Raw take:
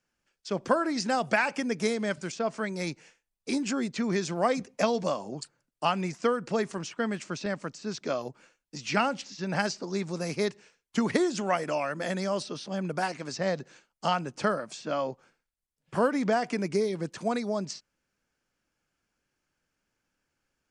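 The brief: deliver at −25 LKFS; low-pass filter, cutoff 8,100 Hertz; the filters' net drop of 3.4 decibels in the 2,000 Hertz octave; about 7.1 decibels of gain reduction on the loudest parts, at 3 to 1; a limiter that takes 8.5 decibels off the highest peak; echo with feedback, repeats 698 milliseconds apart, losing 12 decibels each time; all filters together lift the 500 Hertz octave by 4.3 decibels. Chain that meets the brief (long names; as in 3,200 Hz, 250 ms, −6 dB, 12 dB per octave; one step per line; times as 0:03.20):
low-pass filter 8,100 Hz
parametric band 500 Hz +5.5 dB
parametric band 2,000 Hz −5 dB
downward compressor 3 to 1, threshold −26 dBFS
brickwall limiter −22 dBFS
repeating echo 698 ms, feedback 25%, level −12 dB
level +8 dB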